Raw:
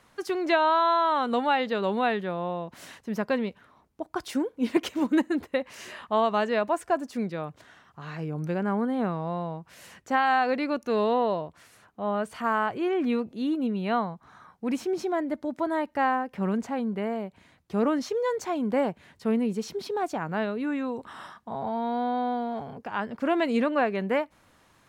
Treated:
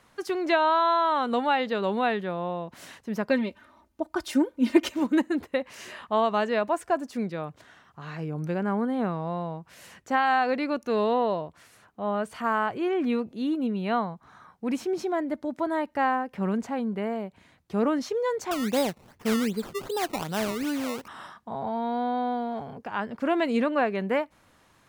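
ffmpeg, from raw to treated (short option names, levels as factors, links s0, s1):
-filter_complex "[0:a]asettb=1/sr,asplit=3[s0][s1][s2];[s0]atrim=end=3.294[s3];[s1]atrim=start=3.29:end=4.95,asetpts=PTS-STARTPTS,afade=t=in:d=0.004:c=qsin,afade=t=out:st=1.656:d=0.004:c=qsin,aecho=1:1:3.3:0.84,atrim=end_sample=73206[s4];[s2]atrim=start=4.946[s5];[s3][s4]acrossfade=d=0.004:c1=hsin:c2=qsin[s6];[s6][s5]acrossfade=d=0.004:c1=qsin:c2=hsin,asettb=1/sr,asplit=3[s7][s8][s9];[s7]atrim=end=18.514[s10];[s8]atrim=start=18.51:end=21.08,asetpts=PTS-STARTPTS,afade=t=in:d=0.004:c=qsin,afade=t=out:st=2.566:d=0.004:c=qsin,acrusher=samples=19:mix=1:aa=0.000001:lfo=1:lforange=19:lforate=2.6[s11];[s9]atrim=start=21.076[s12];[s10][s11]acrossfade=d=0.004:c1=hsin:c2=qsin[s13];[s13][s12]acrossfade=d=0.004:c1=qsin:c2=hsin"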